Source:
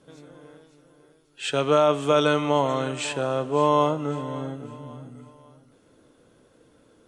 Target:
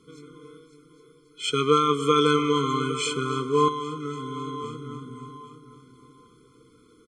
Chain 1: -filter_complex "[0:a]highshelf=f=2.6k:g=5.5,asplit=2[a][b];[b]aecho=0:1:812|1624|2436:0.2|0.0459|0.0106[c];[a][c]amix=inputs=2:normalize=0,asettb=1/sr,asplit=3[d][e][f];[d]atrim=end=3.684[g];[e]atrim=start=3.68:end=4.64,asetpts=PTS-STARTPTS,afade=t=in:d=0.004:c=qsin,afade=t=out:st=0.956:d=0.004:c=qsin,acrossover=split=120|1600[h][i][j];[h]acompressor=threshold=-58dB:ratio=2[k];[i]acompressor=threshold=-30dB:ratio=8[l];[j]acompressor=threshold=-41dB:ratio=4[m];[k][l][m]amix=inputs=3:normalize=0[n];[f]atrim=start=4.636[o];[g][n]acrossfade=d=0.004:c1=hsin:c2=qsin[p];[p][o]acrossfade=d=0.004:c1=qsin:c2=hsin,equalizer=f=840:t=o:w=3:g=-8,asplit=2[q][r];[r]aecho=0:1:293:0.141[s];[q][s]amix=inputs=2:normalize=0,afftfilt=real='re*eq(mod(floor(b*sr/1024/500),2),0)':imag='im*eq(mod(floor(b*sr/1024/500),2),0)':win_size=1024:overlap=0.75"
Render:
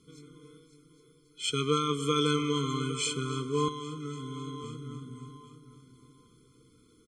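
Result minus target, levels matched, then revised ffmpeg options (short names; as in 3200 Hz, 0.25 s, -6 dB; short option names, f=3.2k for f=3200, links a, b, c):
1000 Hz band -3.0 dB
-filter_complex "[0:a]highshelf=f=2.6k:g=5.5,asplit=2[a][b];[b]aecho=0:1:812|1624|2436:0.2|0.0459|0.0106[c];[a][c]amix=inputs=2:normalize=0,asettb=1/sr,asplit=3[d][e][f];[d]atrim=end=3.684[g];[e]atrim=start=3.68:end=4.64,asetpts=PTS-STARTPTS,afade=t=in:d=0.004:c=qsin,afade=t=out:st=0.956:d=0.004:c=qsin,acrossover=split=120|1600[h][i][j];[h]acompressor=threshold=-58dB:ratio=2[k];[i]acompressor=threshold=-30dB:ratio=8[l];[j]acompressor=threshold=-41dB:ratio=4[m];[k][l][m]amix=inputs=3:normalize=0[n];[f]atrim=start=4.636[o];[g][n]acrossfade=d=0.004:c1=hsin:c2=qsin[p];[p][o]acrossfade=d=0.004:c1=qsin:c2=hsin,equalizer=f=840:t=o:w=3:g=3,asplit=2[q][r];[r]aecho=0:1:293:0.141[s];[q][s]amix=inputs=2:normalize=0,afftfilt=real='re*eq(mod(floor(b*sr/1024/500),2),0)':imag='im*eq(mod(floor(b*sr/1024/500),2),0)':win_size=1024:overlap=0.75"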